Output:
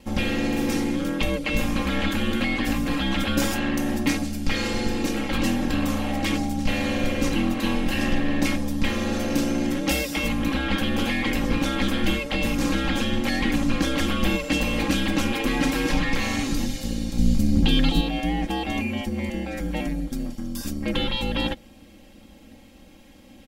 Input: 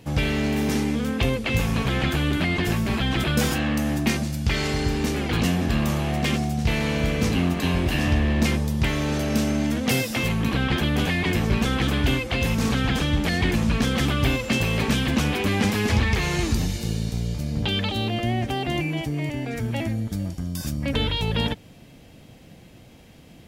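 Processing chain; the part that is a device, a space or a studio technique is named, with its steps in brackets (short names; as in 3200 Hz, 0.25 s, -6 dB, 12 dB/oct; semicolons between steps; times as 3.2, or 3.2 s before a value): 17.18–18.01 tone controls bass +11 dB, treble +6 dB; ring-modulated robot voice (ring modulator 64 Hz; comb 3.7 ms, depth 83%)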